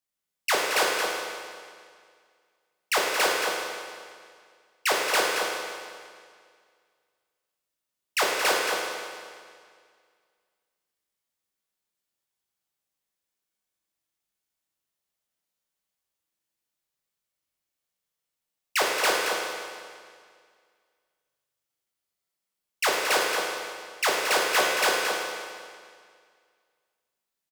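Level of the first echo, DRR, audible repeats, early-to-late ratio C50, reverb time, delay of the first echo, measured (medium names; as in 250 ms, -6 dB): -6.5 dB, -3.5 dB, 1, -1.0 dB, 2.0 s, 224 ms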